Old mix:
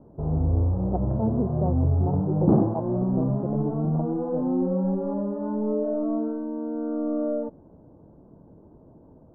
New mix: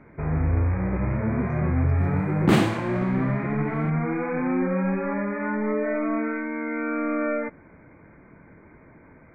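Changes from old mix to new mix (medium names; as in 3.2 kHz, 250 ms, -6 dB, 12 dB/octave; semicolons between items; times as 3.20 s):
speech: add boxcar filter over 57 samples; first sound: add brick-wall FIR low-pass 2.5 kHz; master: remove inverse Chebyshev low-pass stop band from 2.1 kHz, stop band 50 dB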